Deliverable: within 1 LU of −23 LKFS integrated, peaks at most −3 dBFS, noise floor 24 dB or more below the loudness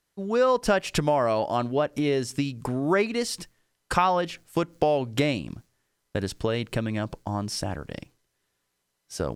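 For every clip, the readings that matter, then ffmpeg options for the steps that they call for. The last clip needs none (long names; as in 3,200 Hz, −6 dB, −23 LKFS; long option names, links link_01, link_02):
integrated loudness −26.5 LKFS; sample peak −7.5 dBFS; target loudness −23.0 LKFS
→ -af "volume=3.5dB"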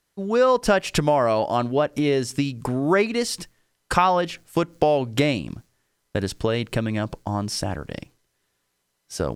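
integrated loudness −23.0 LKFS; sample peak −4.0 dBFS; background noise floor −74 dBFS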